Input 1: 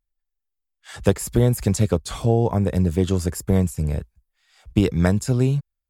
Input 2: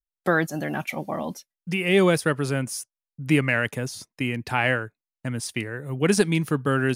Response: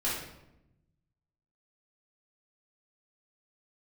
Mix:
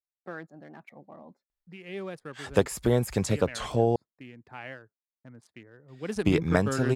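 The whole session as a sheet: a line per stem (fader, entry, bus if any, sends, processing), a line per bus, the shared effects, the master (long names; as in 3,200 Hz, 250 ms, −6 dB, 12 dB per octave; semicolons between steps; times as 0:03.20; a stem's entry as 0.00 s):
0.0 dB, 1.50 s, muted 0:03.96–0:05.88, no send, low-shelf EQ 250 Hz −11.5 dB
0:05.88 −17.5 dB → 0:06.31 −6.5 dB, 0.00 s, no send, adaptive Wiener filter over 15 samples; low-shelf EQ 100 Hz −9 dB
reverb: not used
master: high-shelf EQ 5,700 Hz −10 dB; wow of a warped record 45 rpm, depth 100 cents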